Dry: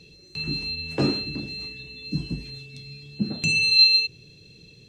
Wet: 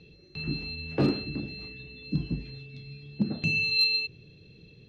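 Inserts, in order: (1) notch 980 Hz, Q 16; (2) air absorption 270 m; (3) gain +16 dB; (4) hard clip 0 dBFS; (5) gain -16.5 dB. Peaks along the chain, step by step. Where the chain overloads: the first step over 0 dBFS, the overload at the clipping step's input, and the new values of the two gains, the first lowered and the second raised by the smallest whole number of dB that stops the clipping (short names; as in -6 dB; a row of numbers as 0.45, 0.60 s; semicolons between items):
-6.5, -12.0, +4.0, 0.0, -16.5 dBFS; step 3, 4.0 dB; step 3 +12 dB, step 5 -12.5 dB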